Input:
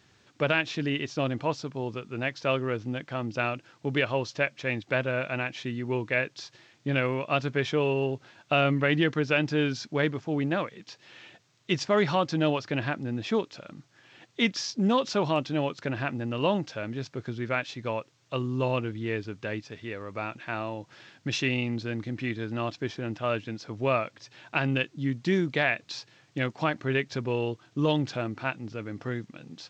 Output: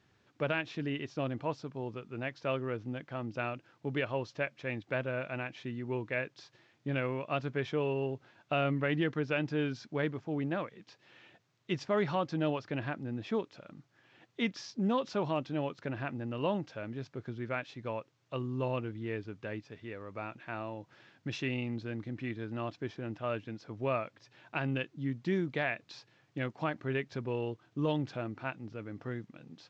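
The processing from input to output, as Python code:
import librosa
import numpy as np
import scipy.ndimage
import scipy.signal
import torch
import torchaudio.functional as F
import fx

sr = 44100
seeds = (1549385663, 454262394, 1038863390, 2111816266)

y = fx.high_shelf(x, sr, hz=3600.0, db=-10.5)
y = F.gain(torch.from_numpy(y), -6.0).numpy()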